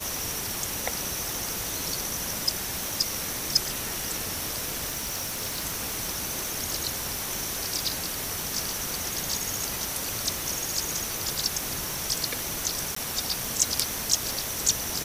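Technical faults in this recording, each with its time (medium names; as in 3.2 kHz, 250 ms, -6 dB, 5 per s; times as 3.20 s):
crackle 410 per s -36 dBFS
4.87–5.65 s: clipped -27 dBFS
12.95–12.96 s: dropout 14 ms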